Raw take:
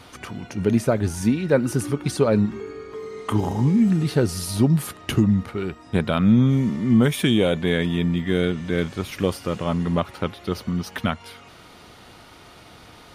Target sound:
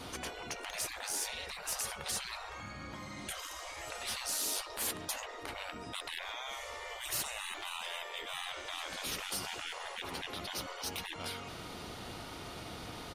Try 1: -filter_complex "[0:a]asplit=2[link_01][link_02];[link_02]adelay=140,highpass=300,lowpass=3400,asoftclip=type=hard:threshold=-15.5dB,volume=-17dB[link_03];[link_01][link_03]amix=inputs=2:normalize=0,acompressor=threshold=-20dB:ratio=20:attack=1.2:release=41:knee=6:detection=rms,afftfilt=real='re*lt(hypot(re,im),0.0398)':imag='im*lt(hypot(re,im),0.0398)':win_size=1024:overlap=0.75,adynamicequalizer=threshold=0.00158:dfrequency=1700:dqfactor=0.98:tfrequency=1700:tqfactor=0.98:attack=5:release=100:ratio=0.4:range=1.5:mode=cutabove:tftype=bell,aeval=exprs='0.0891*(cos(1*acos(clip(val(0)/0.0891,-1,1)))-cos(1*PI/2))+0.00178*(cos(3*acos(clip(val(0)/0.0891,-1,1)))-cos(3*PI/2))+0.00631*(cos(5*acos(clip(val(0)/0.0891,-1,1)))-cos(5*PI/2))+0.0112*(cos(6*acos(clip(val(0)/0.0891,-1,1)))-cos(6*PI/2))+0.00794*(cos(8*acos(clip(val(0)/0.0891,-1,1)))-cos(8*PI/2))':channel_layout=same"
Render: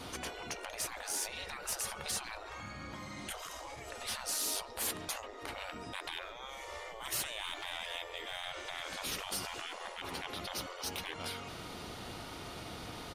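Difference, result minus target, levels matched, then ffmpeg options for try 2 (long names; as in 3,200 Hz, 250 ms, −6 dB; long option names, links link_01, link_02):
downward compressor: peak gain reduction +11 dB
-filter_complex "[0:a]asplit=2[link_01][link_02];[link_02]adelay=140,highpass=300,lowpass=3400,asoftclip=type=hard:threshold=-15.5dB,volume=-17dB[link_03];[link_01][link_03]amix=inputs=2:normalize=0,afftfilt=real='re*lt(hypot(re,im),0.0398)':imag='im*lt(hypot(re,im),0.0398)':win_size=1024:overlap=0.75,adynamicequalizer=threshold=0.00158:dfrequency=1700:dqfactor=0.98:tfrequency=1700:tqfactor=0.98:attack=5:release=100:ratio=0.4:range=1.5:mode=cutabove:tftype=bell,aeval=exprs='0.0891*(cos(1*acos(clip(val(0)/0.0891,-1,1)))-cos(1*PI/2))+0.00178*(cos(3*acos(clip(val(0)/0.0891,-1,1)))-cos(3*PI/2))+0.00631*(cos(5*acos(clip(val(0)/0.0891,-1,1)))-cos(5*PI/2))+0.0112*(cos(6*acos(clip(val(0)/0.0891,-1,1)))-cos(6*PI/2))+0.00794*(cos(8*acos(clip(val(0)/0.0891,-1,1)))-cos(8*PI/2))':channel_layout=same"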